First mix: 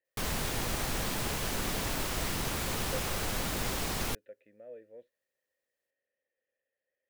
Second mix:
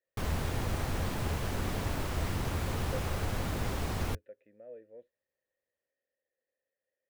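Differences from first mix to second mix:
background: add bell 85 Hz +9.5 dB 0.75 oct; master: add high shelf 2400 Hz -10 dB

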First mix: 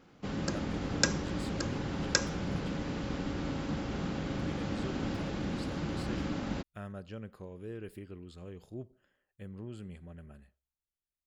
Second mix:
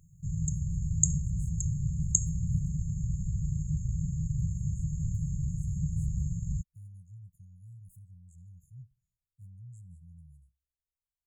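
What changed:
background +10.0 dB; master: add brick-wall FIR band-stop 170–6400 Hz

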